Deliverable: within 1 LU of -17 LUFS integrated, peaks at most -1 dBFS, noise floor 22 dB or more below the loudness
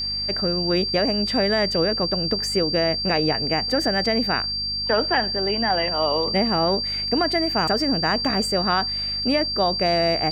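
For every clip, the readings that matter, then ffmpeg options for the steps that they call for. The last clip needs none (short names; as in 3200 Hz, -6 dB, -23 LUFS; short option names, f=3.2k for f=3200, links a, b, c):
hum 50 Hz; harmonics up to 250 Hz; hum level -36 dBFS; steady tone 4700 Hz; tone level -24 dBFS; loudness -21.0 LUFS; peak -8.0 dBFS; loudness target -17.0 LUFS
-> -af "bandreject=f=50:t=h:w=4,bandreject=f=100:t=h:w=4,bandreject=f=150:t=h:w=4,bandreject=f=200:t=h:w=4,bandreject=f=250:t=h:w=4"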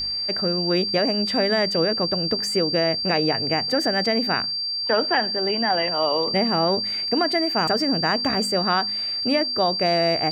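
hum none; steady tone 4700 Hz; tone level -24 dBFS
-> -af "bandreject=f=4.7k:w=30"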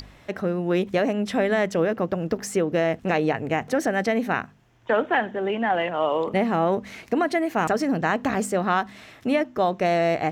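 steady tone none; loudness -24.0 LUFS; peak -9.0 dBFS; loudness target -17.0 LUFS
-> -af "volume=7dB"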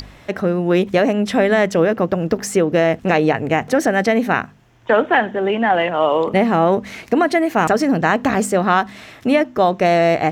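loudness -17.0 LUFS; peak -2.0 dBFS; noise floor -44 dBFS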